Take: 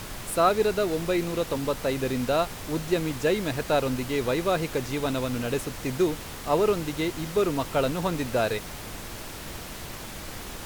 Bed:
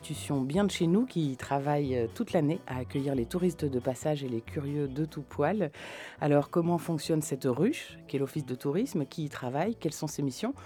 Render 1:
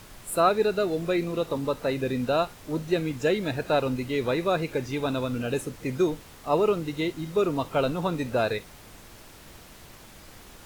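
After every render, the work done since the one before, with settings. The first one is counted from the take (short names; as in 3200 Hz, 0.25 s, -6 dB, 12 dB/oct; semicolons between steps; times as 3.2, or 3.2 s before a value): noise print and reduce 10 dB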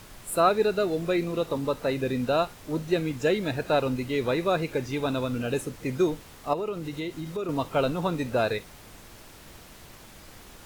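6.53–7.49 compressor 3:1, threshold -30 dBFS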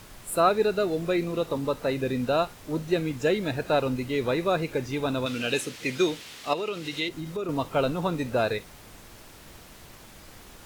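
5.26–7.09 weighting filter D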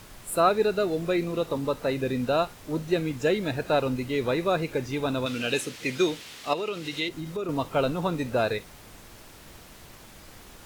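nothing audible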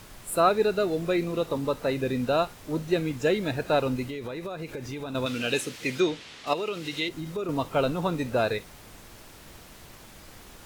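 4.05–5.15 compressor 12:1, threshold -31 dBFS; 6–6.47 air absorption 72 m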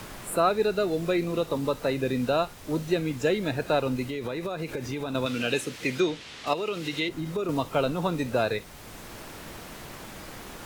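three-band squash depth 40%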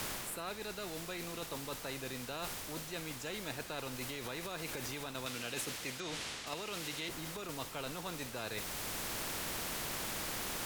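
reverse; compressor, threshold -35 dBFS, peak gain reduction 16 dB; reverse; spectral compressor 2:1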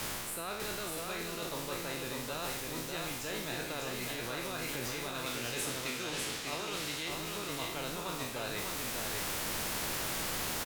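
spectral trails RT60 0.72 s; on a send: echo 0.598 s -3.5 dB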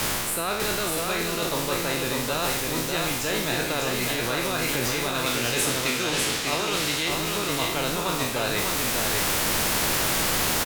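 gain +12 dB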